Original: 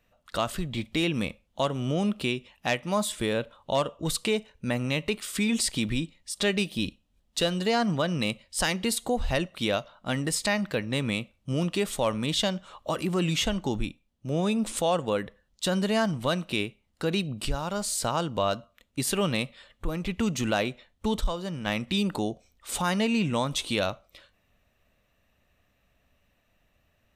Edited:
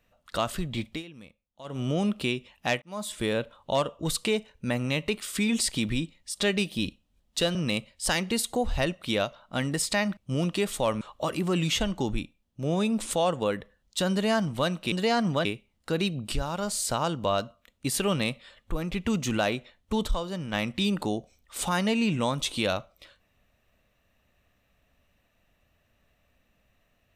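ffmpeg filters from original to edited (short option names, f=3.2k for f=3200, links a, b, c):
-filter_complex "[0:a]asplit=9[a][b][c][d][e][f][g][h][i];[a]atrim=end=1.03,asetpts=PTS-STARTPTS,afade=t=out:st=0.87:d=0.16:silence=0.112202[j];[b]atrim=start=1.03:end=1.64,asetpts=PTS-STARTPTS,volume=-19dB[k];[c]atrim=start=1.64:end=2.82,asetpts=PTS-STARTPTS,afade=t=in:d=0.16:silence=0.112202,afade=t=out:st=1.176:d=0.004:c=hsin[l];[d]atrim=start=2.82:end=7.552,asetpts=PTS-STARTPTS,afade=t=in:d=0.44[m];[e]atrim=start=8.078:end=10.702[n];[f]atrim=start=11.358:end=12.202[o];[g]atrim=start=12.668:end=16.582[p];[h]atrim=start=7.548:end=8.082[q];[i]atrim=start=16.578[r];[j][k][l][m]concat=n=4:v=0:a=1[s];[s][n]acrossfade=d=0.004:c1=hsin:c2=hsin[t];[t][o]acrossfade=d=0.004:c1=hsin:c2=hsin[u];[u][p]acrossfade=d=0.004:c1=hsin:c2=hsin[v];[v][q]acrossfade=d=0.004:c1=hsin:c2=hsin[w];[w][r]acrossfade=d=0.004:c1=hsin:c2=hsin"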